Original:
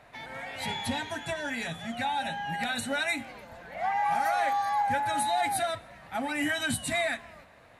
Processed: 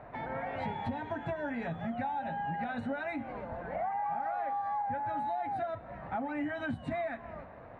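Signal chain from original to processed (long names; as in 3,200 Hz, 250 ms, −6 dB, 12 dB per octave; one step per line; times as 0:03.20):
low-pass filter 1,100 Hz 12 dB per octave
downward compressor 6 to 1, threshold −41 dBFS, peak gain reduction 15 dB
level +8 dB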